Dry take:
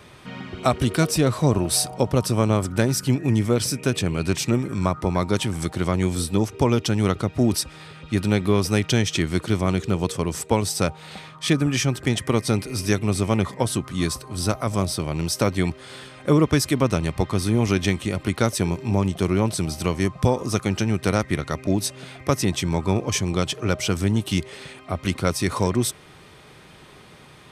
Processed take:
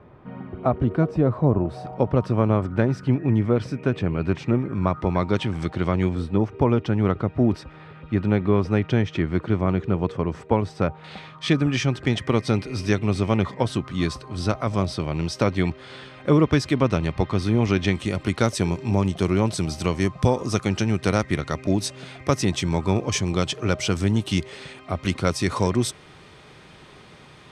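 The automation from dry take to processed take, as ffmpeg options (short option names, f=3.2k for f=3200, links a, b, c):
-af "asetnsamples=n=441:p=0,asendcmd='1.85 lowpass f 1800;4.87 lowpass f 3100;6.09 lowpass f 1800;11.04 lowpass f 4200;17.95 lowpass f 7400',lowpass=1k"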